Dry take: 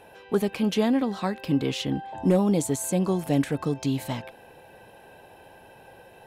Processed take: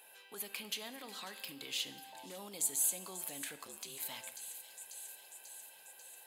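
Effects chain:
high-pass filter 100 Hz
delay with a high-pass on its return 541 ms, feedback 67%, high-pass 3,500 Hz, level −11.5 dB
brickwall limiter −21 dBFS, peak gain reduction 10 dB
dynamic equaliser 7,900 Hz, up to −5 dB, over −50 dBFS, Q 0.85
0:03.55–0:04.01: ring modulation 42 Hz → 160 Hz
first difference
notch filter 5,600 Hz, Q 8.3
dense smooth reverb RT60 1.2 s, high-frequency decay 0.75×, DRR 11 dB
level +3.5 dB

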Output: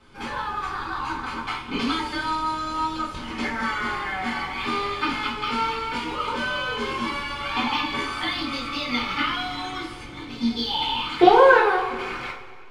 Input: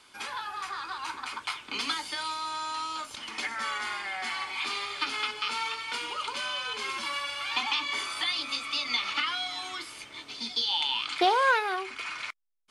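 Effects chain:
spectral tilt −4.5 dB per octave
in parallel at −7 dB: dead-zone distortion −50.5 dBFS
on the sum: coupled-rooms reverb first 0.36 s, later 2 s, from −16 dB, DRR −6.5 dB
level −2 dB

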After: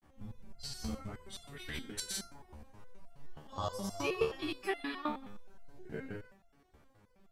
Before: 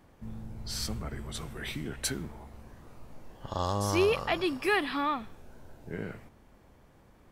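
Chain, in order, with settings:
hum removal 52.91 Hz, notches 33
granular cloud, pitch spread up and down by 0 semitones
step-sequenced resonator 9.5 Hz 75–690 Hz
level +6.5 dB

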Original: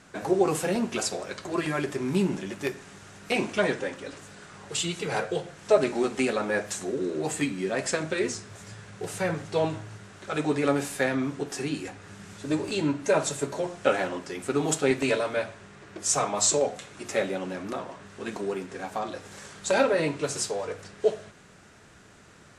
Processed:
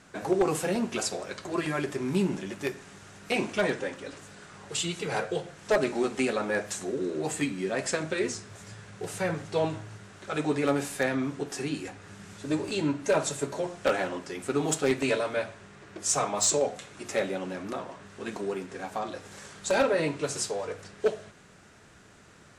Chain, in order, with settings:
wave folding −14 dBFS
level −1.5 dB

